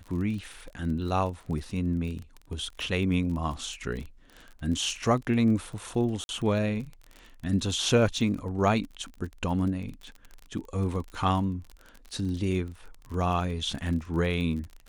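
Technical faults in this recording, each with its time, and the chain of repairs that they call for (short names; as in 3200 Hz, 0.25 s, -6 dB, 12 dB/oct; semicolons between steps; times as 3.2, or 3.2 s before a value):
crackle 33/s -35 dBFS
6.24–6.29 gap 51 ms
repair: de-click; interpolate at 6.24, 51 ms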